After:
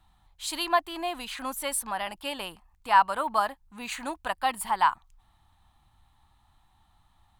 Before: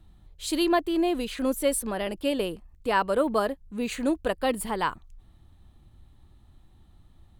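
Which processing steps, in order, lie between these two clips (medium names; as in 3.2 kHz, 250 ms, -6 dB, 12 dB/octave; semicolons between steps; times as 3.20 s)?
resonant low shelf 630 Hz -10.5 dB, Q 3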